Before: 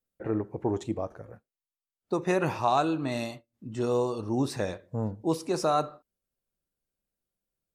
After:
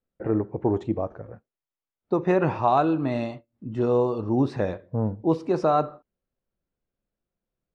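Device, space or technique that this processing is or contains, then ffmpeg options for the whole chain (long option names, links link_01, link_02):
phone in a pocket: -af "lowpass=3900,highshelf=frequency=2100:gain=-10.5,volume=5.5dB"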